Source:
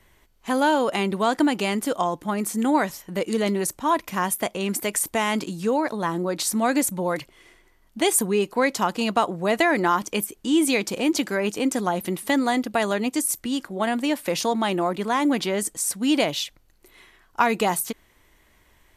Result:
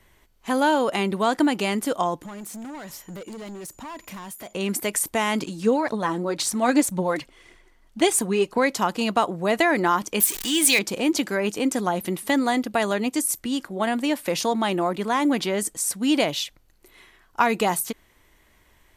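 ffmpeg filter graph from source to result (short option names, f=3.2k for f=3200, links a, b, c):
-filter_complex "[0:a]asettb=1/sr,asplit=3[a][b][c];[a]atrim=end=2.224[d];[b]atrim=start=2.22:end=4.53,asetpts=PTS-STARTPTS,afade=t=in:d=0.004:c=qsin,afade=t=out:st=2.306:d=0.004:c=qsin,acompressor=threshold=-32dB:ratio=4:attack=3.2:release=140:knee=1:detection=peak,aeval=exprs='val(0)+0.00158*sin(2*PI*7000*n/s)':c=same,asoftclip=type=hard:threshold=-34dB[e];[c]atrim=start=4.526[f];[d][e]acrossfade=d=0.004:c1=hsin:c2=qsin[g];[g][f]acrossfade=d=0.004:c1=qsin:c2=hsin,asettb=1/sr,asplit=3[h][i][j];[h]atrim=end=5.414[k];[i]atrim=start=5.41:end=8.58,asetpts=PTS-STARTPTS,afade=t=in:d=0.004:c=qsin,afade=t=out:st=3.166:d=0.004:c=qsin,lowpass=10k,aphaser=in_gain=1:out_gain=1:delay=4.5:decay=0.41:speed=1.9:type=triangular[l];[j]atrim=start=8.576[m];[k][l]acrossfade=d=0.004:c1=hsin:c2=qsin[n];[n][m]acrossfade=d=0.004:c1=qsin:c2=hsin,asettb=1/sr,asplit=3[o][p][q];[o]atrim=end=10.204[r];[p]atrim=start=10.2:end=10.79,asetpts=PTS-STARTPTS,afade=t=in:d=0.004:c=qsin,afade=t=out:st=0.586:d=0.004:c=qsin,aeval=exprs='val(0)+0.5*0.0335*sgn(val(0))':c=same,tiltshelf=f=1.1k:g=-8,bandreject=f=1.4k:w=6.8[s];[q]atrim=start=10.786[t];[r][s]acrossfade=d=0.004:c1=hsin:c2=qsin[u];[u][t]acrossfade=d=0.004:c1=qsin:c2=hsin"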